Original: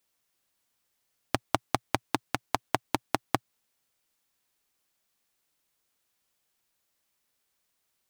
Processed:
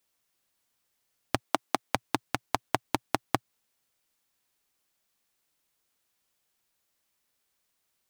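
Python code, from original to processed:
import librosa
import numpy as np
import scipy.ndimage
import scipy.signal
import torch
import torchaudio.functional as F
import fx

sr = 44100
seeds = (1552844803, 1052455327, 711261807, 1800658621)

y = fx.highpass(x, sr, hz=190.0, slope=24, at=(1.4, 1.95))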